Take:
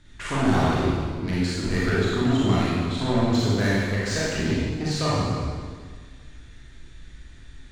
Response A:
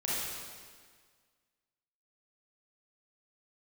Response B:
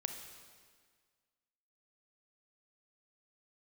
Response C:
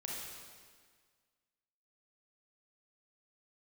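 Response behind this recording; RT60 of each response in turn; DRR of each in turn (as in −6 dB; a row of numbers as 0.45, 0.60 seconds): A; 1.7, 1.7, 1.7 seconds; −8.0, 5.5, −3.5 decibels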